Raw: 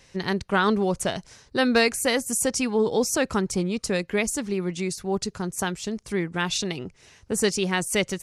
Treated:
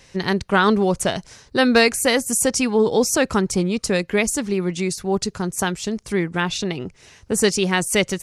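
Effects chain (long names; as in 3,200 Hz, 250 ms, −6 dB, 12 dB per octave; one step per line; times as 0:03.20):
0:06.40–0:06.80: high-shelf EQ 3,700 Hz −8.5 dB
level +5 dB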